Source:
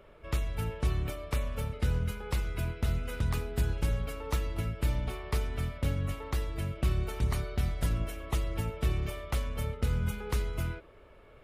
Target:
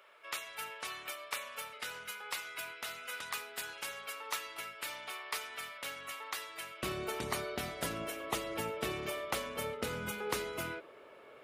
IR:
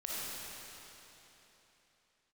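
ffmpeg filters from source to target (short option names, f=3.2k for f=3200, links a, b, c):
-af "asetnsamples=n=441:p=0,asendcmd='6.83 highpass f 330',highpass=1.1k,volume=3.5dB"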